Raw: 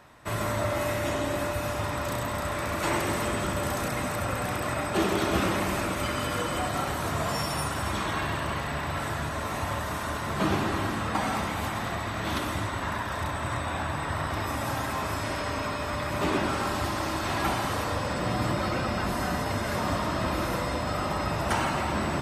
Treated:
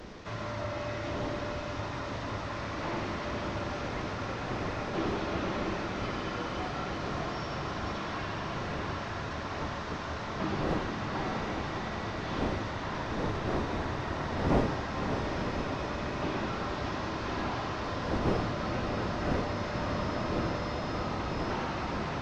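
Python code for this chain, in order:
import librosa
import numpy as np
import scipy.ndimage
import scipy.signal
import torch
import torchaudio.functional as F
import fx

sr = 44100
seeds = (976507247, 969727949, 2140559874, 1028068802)

y = fx.delta_mod(x, sr, bps=32000, step_db=-38.0)
y = fx.dmg_wind(y, sr, seeds[0], corner_hz=450.0, level_db=-32.0)
y = fx.echo_diffused(y, sr, ms=595, feedback_pct=76, wet_db=-7)
y = y * 10.0 ** (-7.5 / 20.0)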